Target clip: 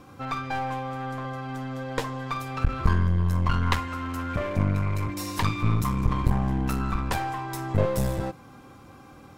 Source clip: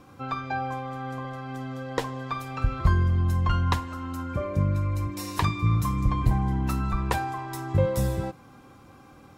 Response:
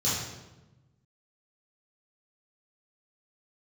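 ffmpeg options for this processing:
-filter_complex "[0:a]asettb=1/sr,asplit=3[s0][s1][s2];[s0]atrim=end=3.614[s3];[s1]atrim=start=3.61:end=5.14,asetpts=PTS-STARTPTS,afade=t=in:d=0.004:c=qsin,afade=t=out:st=1.526:d=0.004:c=qsin,equalizer=f=2000:w=1.3:g=7.5[s4];[s2]atrim=start=5.136[s5];[s3][s4]acrossfade=d=0.004:c1=hsin:c2=qsin[s6];[s6][s5]acrossfade=d=0.004:c1=qsin:c2=hsin,aeval=exprs='clip(val(0),-1,0.0251)':c=same,volume=1.33"

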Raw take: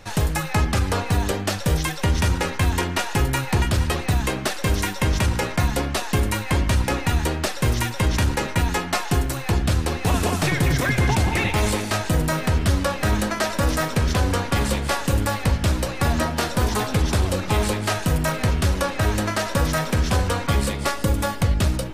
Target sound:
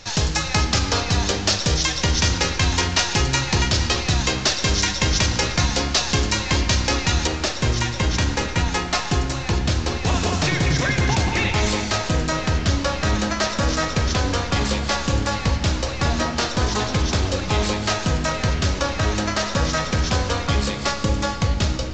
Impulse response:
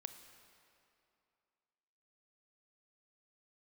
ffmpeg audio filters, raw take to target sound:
-filter_complex "[0:a]aresample=16000,aresample=44100,asetnsamples=n=441:p=0,asendcmd='7.27 equalizer g 6',equalizer=f=5200:t=o:w=1.6:g=13[s0];[1:a]atrim=start_sample=2205[s1];[s0][s1]afir=irnorm=-1:irlink=0,volume=1.58"

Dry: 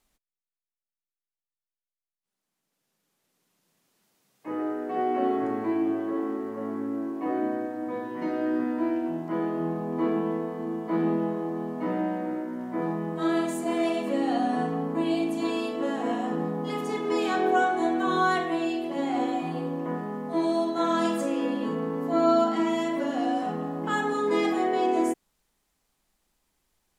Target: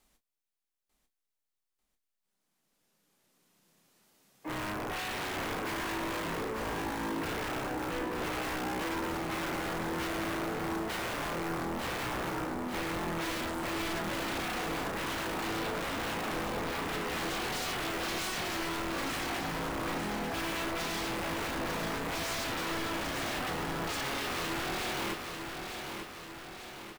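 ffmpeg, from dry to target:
-filter_complex "[0:a]acrossover=split=2900[s0][s1];[s1]acompressor=threshold=0.00178:ratio=4:attack=1:release=60[s2];[s0][s2]amix=inputs=2:normalize=0,asplit=2[s3][s4];[s4]alimiter=limit=0.0708:level=0:latency=1:release=178,volume=1.41[s5];[s3][s5]amix=inputs=2:normalize=0,acrusher=bits=6:mode=log:mix=0:aa=0.000001,aeval=exprs='0.376*(cos(1*acos(clip(val(0)/0.376,-1,1)))-cos(1*PI/2))+0.0335*(cos(3*acos(clip(val(0)/0.376,-1,1)))-cos(3*PI/2))+0.0944*(cos(7*acos(clip(val(0)/0.376,-1,1)))-cos(7*PI/2))':c=same,aeval=exprs='(mod(18.8*val(0)+1,2)-1)/18.8':c=same,asplit=2[s6][s7];[s7]adelay=30,volume=0.316[s8];[s6][s8]amix=inputs=2:normalize=0,asplit=2[s9][s10];[s10]aecho=0:1:894|1788|2682|3576|4470|5364|6258:0.501|0.271|0.146|0.0789|0.0426|0.023|0.0124[s11];[s9][s11]amix=inputs=2:normalize=0,volume=0.531"

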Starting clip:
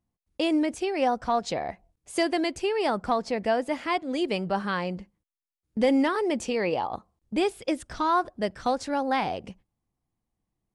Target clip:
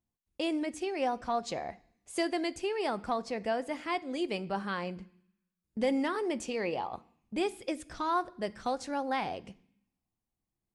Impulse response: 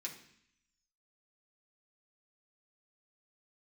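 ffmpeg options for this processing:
-filter_complex "[0:a]asplit=2[s0][s1];[1:a]atrim=start_sample=2205,highshelf=f=7500:g=10[s2];[s1][s2]afir=irnorm=-1:irlink=0,volume=0.355[s3];[s0][s3]amix=inputs=2:normalize=0,volume=0.422"

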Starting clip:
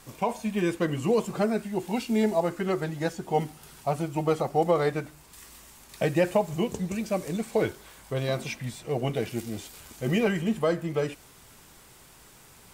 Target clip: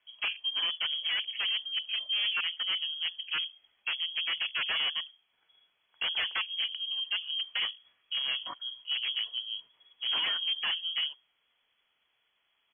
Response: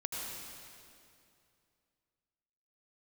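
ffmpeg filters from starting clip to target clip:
-af "afwtdn=0.0178,bandreject=f=60:t=h:w=6,bandreject=f=120:t=h:w=6,bandreject=f=180:t=h:w=6,bandreject=f=240:t=h:w=6,aresample=11025,aeval=exprs='0.0794*(abs(mod(val(0)/0.0794+3,4)-2)-1)':c=same,aresample=44100,lowpass=f=2900:t=q:w=0.5098,lowpass=f=2900:t=q:w=0.6013,lowpass=f=2900:t=q:w=0.9,lowpass=f=2900:t=q:w=2.563,afreqshift=-3400,volume=0.708"

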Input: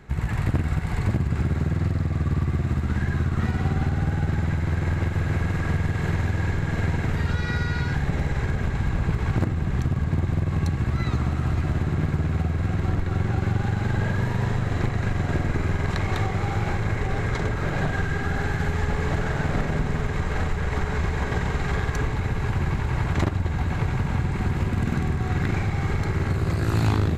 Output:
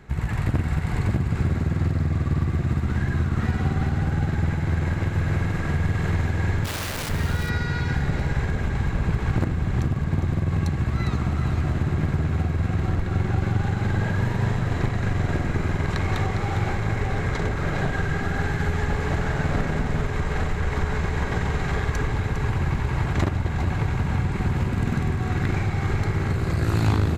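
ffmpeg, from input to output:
-filter_complex "[0:a]asplit=3[s0][s1][s2];[s0]afade=t=out:st=6.64:d=0.02[s3];[s1]aeval=exprs='(mod(20*val(0)+1,2)-1)/20':c=same,afade=t=in:st=6.64:d=0.02,afade=t=out:st=7.08:d=0.02[s4];[s2]afade=t=in:st=7.08:d=0.02[s5];[s3][s4][s5]amix=inputs=3:normalize=0,aecho=1:1:405:0.355"

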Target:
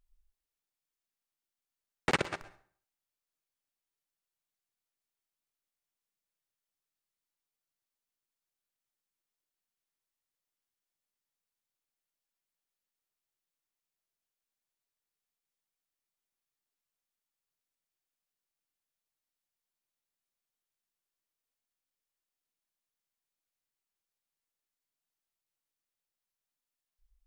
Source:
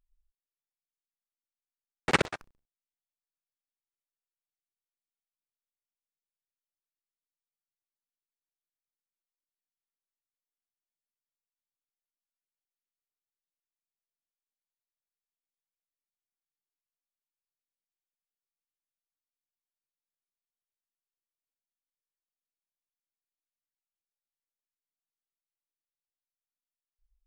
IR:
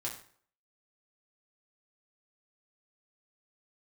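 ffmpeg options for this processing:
-filter_complex "[0:a]acompressor=threshold=0.0316:ratio=4,asplit=2[s0][s1];[1:a]atrim=start_sample=2205,adelay=111[s2];[s1][s2]afir=irnorm=-1:irlink=0,volume=0.133[s3];[s0][s3]amix=inputs=2:normalize=0,volume=1.5"

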